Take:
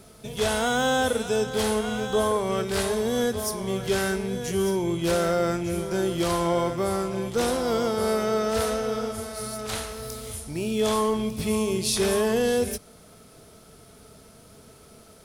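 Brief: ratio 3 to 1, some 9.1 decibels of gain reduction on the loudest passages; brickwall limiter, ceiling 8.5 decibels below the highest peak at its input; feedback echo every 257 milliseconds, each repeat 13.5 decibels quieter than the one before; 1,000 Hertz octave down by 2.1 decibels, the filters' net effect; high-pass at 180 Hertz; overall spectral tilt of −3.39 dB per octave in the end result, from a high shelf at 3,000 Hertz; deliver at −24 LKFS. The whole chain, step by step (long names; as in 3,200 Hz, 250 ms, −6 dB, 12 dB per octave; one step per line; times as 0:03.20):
high-pass filter 180 Hz
parametric band 1,000 Hz −4 dB
high-shelf EQ 3,000 Hz +8 dB
downward compressor 3 to 1, threshold −30 dBFS
brickwall limiter −22 dBFS
repeating echo 257 ms, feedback 21%, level −13.5 dB
level +8 dB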